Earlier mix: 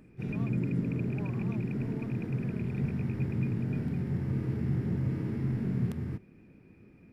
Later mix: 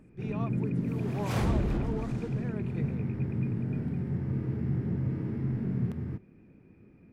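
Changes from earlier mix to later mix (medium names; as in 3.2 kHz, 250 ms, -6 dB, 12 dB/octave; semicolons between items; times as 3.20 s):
speech +11.5 dB; second sound: unmuted; master: add treble shelf 2.8 kHz -10 dB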